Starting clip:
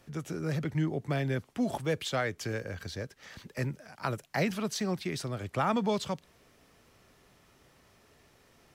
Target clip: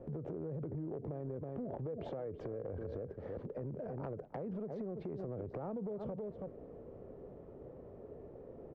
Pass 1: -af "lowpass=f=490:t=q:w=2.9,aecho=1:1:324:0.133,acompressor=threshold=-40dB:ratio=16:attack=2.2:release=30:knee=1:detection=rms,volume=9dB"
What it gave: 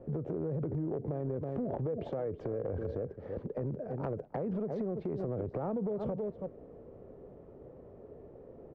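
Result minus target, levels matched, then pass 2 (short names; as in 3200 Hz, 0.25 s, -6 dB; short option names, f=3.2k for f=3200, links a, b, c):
compressor: peak gain reduction -6.5 dB
-af "lowpass=f=490:t=q:w=2.9,aecho=1:1:324:0.133,acompressor=threshold=-47dB:ratio=16:attack=2.2:release=30:knee=1:detection=rms,volume=9dB"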